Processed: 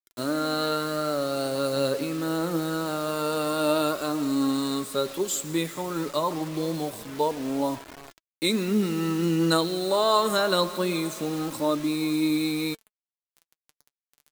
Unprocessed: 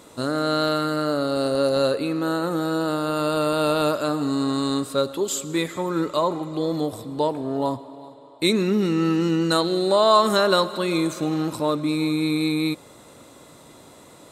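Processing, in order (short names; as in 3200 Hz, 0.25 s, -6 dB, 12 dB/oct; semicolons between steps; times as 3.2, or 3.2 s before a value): HPF 100 Hz 24 dB/oct; high shelf 10000 Hz +8.5 dB; bit-crush 6-bit; flange 0.25 Hz, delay 2.6 ms, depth 4.7 ms, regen +52%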